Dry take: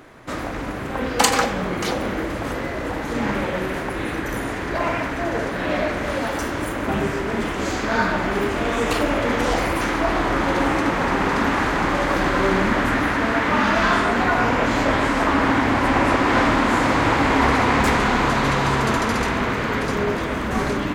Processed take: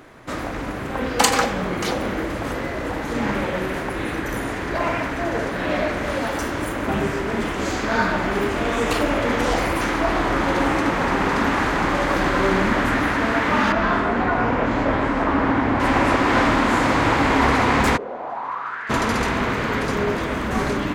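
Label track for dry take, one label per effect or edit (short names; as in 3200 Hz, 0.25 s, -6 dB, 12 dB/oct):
13.720000	15.800000	LPF 1500 Hz 6 dB/oct
17.960000	18.890000	band-pass 440 Hz -> 1800 Hz, Q 4.8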